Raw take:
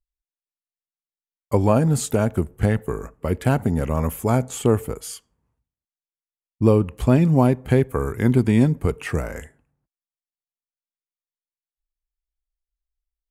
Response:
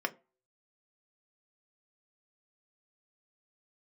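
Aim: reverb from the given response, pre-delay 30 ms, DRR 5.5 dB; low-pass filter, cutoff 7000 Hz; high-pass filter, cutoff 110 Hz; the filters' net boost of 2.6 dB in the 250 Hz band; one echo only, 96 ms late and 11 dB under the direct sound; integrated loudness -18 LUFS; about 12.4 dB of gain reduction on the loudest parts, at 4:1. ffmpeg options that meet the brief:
-filter_complex "[0:a]highpass=110,lowpass=7k,equalizer=f=250:t=o:g=3.5,acompressor=threshold=-25dB:ratio=4,aecho=1:1:96:0.282,asplit=2[a][b];[1:a]atrim=start_sample=2205,adelay=30[c];[b][c]afir=irnorm=-1:irlink=0,volume=-11.5dB[d];[a][d]amix=inputs=2:normalize=0,volume=11dB"

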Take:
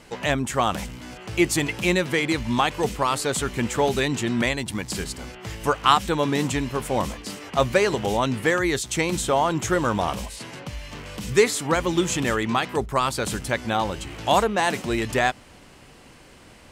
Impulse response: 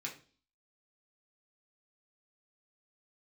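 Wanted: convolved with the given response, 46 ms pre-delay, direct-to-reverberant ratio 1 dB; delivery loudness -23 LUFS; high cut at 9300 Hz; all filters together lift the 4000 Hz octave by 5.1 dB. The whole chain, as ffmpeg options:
-filter_complex "[0:a]lowpass=9.3k,equalizer=f=4k:t=o:g=6.5,asplit=2[a][b];[1:a]atrim=start_sample=2205,adelay=46[c];[b][c]afir=irnorm=-1:irlink=0,volume=-1dB[d];[a][d]amix=inputs=2:normalize=0,volume=-3dB"

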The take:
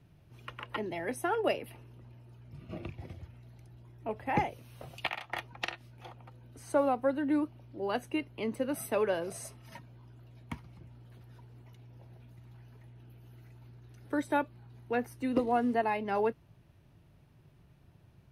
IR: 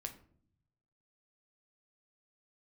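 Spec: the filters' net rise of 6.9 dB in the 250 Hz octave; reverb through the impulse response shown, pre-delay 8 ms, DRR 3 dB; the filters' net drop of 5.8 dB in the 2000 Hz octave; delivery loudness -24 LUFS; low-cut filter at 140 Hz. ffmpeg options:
-filter_complex "[0:a]highpass=140,equalizer=f=250:t=o:g=8.5,equalizer=f=2k:t=o:g=-8,asplit=2[a][b];[1:a]atrim=start_sample=2205,adelay=8[c];[b][c]afir=irnorm=-1:irlink=0,volume=-0.5dB[d];[a][d]amix=inputs=2:normalize=0,volume=4dB"

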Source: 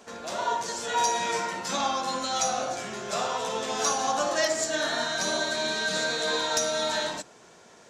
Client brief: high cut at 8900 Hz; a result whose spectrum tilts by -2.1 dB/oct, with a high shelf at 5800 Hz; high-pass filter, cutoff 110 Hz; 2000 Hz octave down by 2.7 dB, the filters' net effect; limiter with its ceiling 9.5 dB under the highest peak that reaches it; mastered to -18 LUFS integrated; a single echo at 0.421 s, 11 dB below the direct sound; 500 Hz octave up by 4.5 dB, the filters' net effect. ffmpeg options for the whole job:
-af "highpass=110,lowpass=8.9k,equalizer=f=500:t=o:g=6,equalizer=f=2k:t=o:g=-3.5,highshelf=f=5.8k:g=-6.5,alimiter=limit=-21dB:level=0:latency=1,aecho=1:1:421:0.282,volume=11.5dB"

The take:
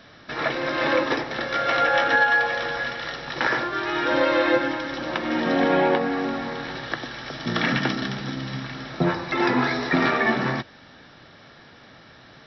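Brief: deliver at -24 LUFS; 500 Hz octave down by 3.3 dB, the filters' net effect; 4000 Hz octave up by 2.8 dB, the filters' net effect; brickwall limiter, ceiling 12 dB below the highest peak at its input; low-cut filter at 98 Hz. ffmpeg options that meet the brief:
-af "highpass=98,equalizer=f=500:t=o:g=-4,equalizer=f=4k:t=o:g=3.5,volume=4.5dB,alimiter=limit=-15dB:level=0:latency=1"

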